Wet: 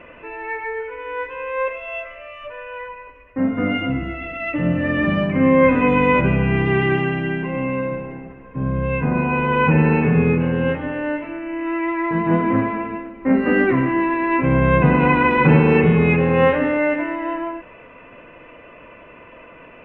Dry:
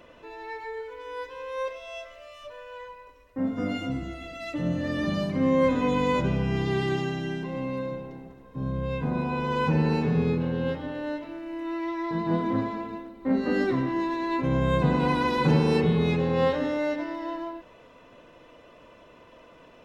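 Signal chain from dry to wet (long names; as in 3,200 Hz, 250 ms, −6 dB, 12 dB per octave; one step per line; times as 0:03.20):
drawn EQ curve 860 Hz 0 dB, 2,600 Hz +7 dB, 4,000 Hz −24 dB
level +8 dB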